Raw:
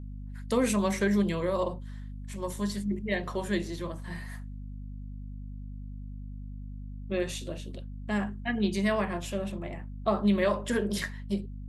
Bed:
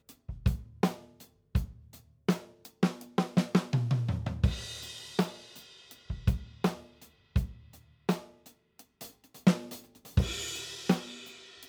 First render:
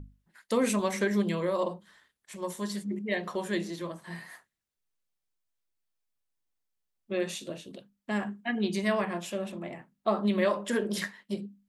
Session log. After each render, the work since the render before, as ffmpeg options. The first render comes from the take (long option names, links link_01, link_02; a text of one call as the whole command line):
ffmpeg -i in.wav -af "bandreject=frequency=50:width_type=h:width=6,bandreject=frequency=100:width_type=h:width=6,bandreject=frequency=150:width_type=h:width=6,bandreject=frequency=200:width_type=h:width=6,bandreject=frequency=250:width_type=h:width=6" out.wav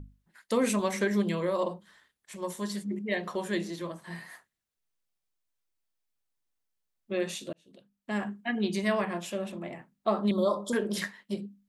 ffmpeg -i in.wav -filter_complex "[0:a]asettb=1/sr,asplit=3[link_01][link_02][link_03];[link_01]atrim=end=10.314[link_04];[link_02]atrim=start=10.31:end=10.73,asetpts=PTS-STARTPTS,afade=type=in:duration=0.004:curve=qsin,afade=type=out:start_time=0.416:duration=0.004:curve=qsin,asuperstop=centerf=2100:order=20:qfactor=1.1[link_05];[link_03]atrim=start=10.726[link_06];[link_04][link_05]acrossfade=duration=0.004:curve1=hsin:curve2=qsin[link_07];[link_07][link_06]acrossfade=duration=0.004:curve1=qsin:curve2=hsin,asplit=2[link_08][link_09];[link_08]atrim=end=7.53,asetpts=PTS-STARTPTS,afade=type=out:start_time=7.526:duration=0.004:curve=hsin[link_10];[link_09]atrim=start=7.53,asetpts=PTS-STARTPTS,afade=type=in:duration=0.7[link_11];[link_10][link_11]concat=n=2:v=0:a=1" out.wav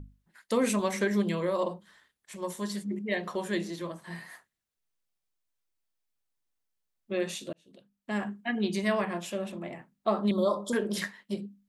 ffmpeg -i in.wav -af anull out.wav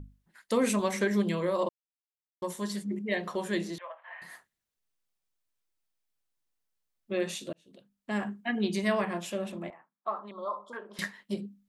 ffmpeg -i in.wav -filter_complex "[0:a]asettb=1/sr,asplit=3[link_01][link_02][link_03];[link_01]atrim=end=3.784[link_04];[link_02]atrim=start=3.78:end=4.22,asetpts=PTS-STARTPTS,afade=type=in:duration=0.004:curve=qsin,afade=type=out:start_time=0.436:duration=0.004:curve=qsin,asuperpass=centerf=1300:order=12:qfactor=0.55[link_05];[link_03]atrim=start=4.216[link_06];[link_04][link_05]acrossfade=duration=0.004:curve1=hsin:curve2=qsin[link_07];[link_07][link_06]acrossfade=duration=0.004:curve1=qsin:curve2=hsin,asettb=1/sr,asplit=3[link_08][link_09][link_10];[link_08]atrim=end=9.704[link_11];[link_09]atrim=start=9.7:end=10.99,asetpts=PTS-STARTPTS,afade=type=in:duration=0.004:curve=qsin,afade=type=out:start_time=1.286:duration=0.004:curve=qsin,bandpass=frequency=1100:width_type=q:width=2.4[link_12];[link_10]atrim=start=10.986[link_13];[link_11][link_12]acrossfade=duration=0.004:curve1=hsin:curve2=qsin[link_14];[link_14][link_13]acrossfade=duration=0.004:curve1=qsin:curve2=hsin,asplit=3[link_15][link_16][link_17];[link_15]atrim=end=1.69,asetpts=PTS-STARTPTS,afade=type=out:start_time=1.686:duration=0.004:curve=hsin[link_18];[link_16]atrim=start=1.69:end=2.42,asetpts=PTS-STARTPTS,volume=0[link_19];[link_17]atrim=start=2.42,asetpts=PTS-STARTPTS,afade=type=in:duration=0.004:curve=hsin[link_20];[link_18][link_19][link_20]concat=n=3:v=0:a=1" out.wav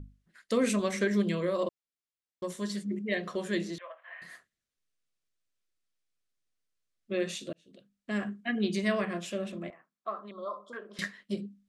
ffmpeg -i in.wav -af "lowpass=8700,equalizer=frequency=880:width_type=o:width=0.31:gain=-14.5" out.wav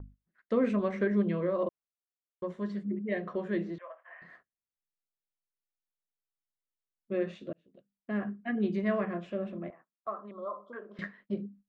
ffmpeg -i in.wav -af "agate=range=-13dB:threshold=-54dB:ratio=16:detection=peak,lowpass=1500" out.wav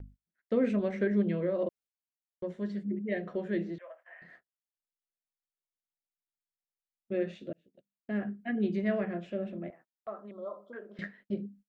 ffmpeg -i in.wav -af "agate=range=-12dB:threshold=-56dB:ratio=16:detection=peak,equalizer=frequency=1100:width=4:gain=-13" out.wav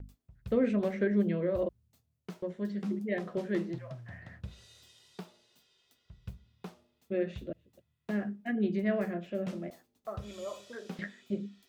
ffmpeg -i in.wav -i bed.wav -filter_complex "[1:a]volume=-16.5dB[link_01];[0:a][link_01]amix=inputs=2:normalize=0" out.wav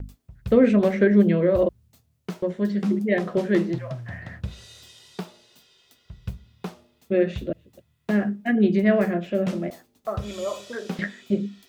ffmpeg -i in.wav -af "volume=11dB" out.wav